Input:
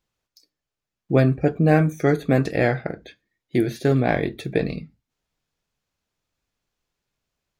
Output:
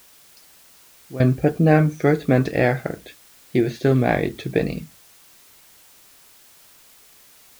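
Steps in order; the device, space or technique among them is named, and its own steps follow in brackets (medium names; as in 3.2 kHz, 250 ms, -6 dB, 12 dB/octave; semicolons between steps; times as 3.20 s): worn cassette (low-pass 6 kHz; wow and flutter; level dips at 1.09 s, 108 ms -17 dB; white noise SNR 28 dB); trim +1.5 dB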